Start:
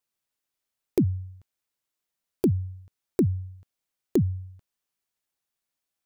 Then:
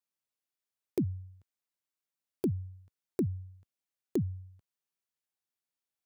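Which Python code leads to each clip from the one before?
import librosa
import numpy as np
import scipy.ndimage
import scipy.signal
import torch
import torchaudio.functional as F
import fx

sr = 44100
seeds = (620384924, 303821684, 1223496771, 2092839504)

y = scipy.signal.sosfilt(scipy.signal.butter(2, 68.0, 'highpass', fs=sr, output='sos'), x)
y = F.gain(torch.from_numpy(y), -8.0).numpy()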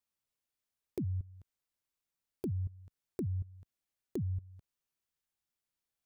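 y = fx.low_shelf(x, sr, hz=100.0, db=11.5)
y = fx.level_steps(y, sr, step_db=19)
y = F.gain(torch.from_numpy(y), 4.0).numpy()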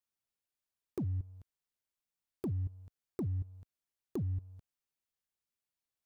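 y = fx.leveller(x, sr, passes=1)
y = F.gain(torch.from_numpy(y), -2.0).numpy()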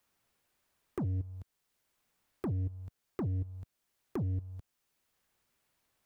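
y = 10.0 ** (-35.5 / 20.0) * np.tanh(x / 10.0 ** (-35.5 / 20.0))
y = fx.band_squash(y, sr, depth_pct=40)
y = F.gain(torch.from_numpy(y), 6.5).numpy()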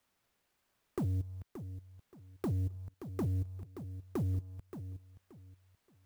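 y = fx.echo_feedback(x, sr, ms=576, feedback_pct=26, wet_db=-11.0)
y = fx.clock_jitter(y, sr, seeds[0], jitter_ms=0.03)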